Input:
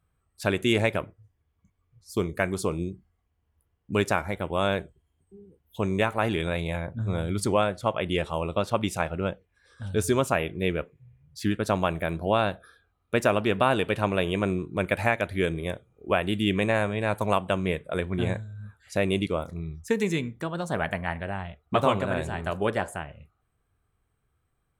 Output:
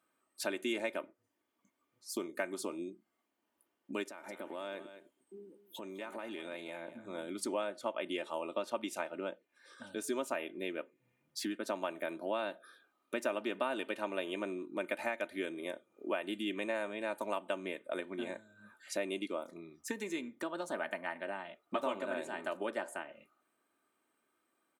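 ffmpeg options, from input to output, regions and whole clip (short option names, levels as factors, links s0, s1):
-filter_complex "[0:a]asettb=1/sr,asplit=3[s0][s1][s2];[s0]atrim=end=4.034[s3];[s1]atrim=start=4.03:end=7.05,asetpts=PTS-STARTPTS,afade=t=in:d=0.004:c=qsin,afade=t=out:st=3.016:d=0.004:c=qsin,acompressor=threshold=0.0178:ratio=12:attack=3.2:release=140:knee=1:detection=peak,aecho=1:1:208:0.188,atrim=end_sample=133182[s4];[s2]atrim=start=7.046[s5];[s3][s4]acrossfade=d=0.004:c1=hsin:c2=qsin[s6];[s6][s5]acrossfade=d=0.004:c1=qsin:c2=hsin,acompressor=threshold=0.00891:ratio=2.5,highpass=f=240:w=0.5412,highpass=f=240:w=1.3066,aecho=1:1:3.3:0.52,volume=1.12"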